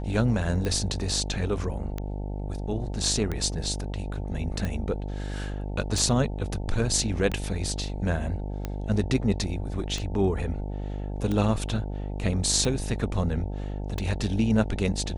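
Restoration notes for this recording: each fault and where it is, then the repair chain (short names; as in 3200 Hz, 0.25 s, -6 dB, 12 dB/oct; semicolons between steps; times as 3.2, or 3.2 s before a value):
buzz 50 Hz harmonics 18 -32 dBFS
tick 45 rpm -17 dBFS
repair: de-click; de-hum 50 Hz, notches 18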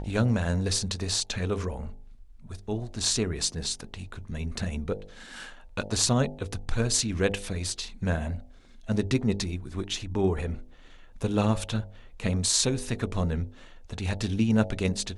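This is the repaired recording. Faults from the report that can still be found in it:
none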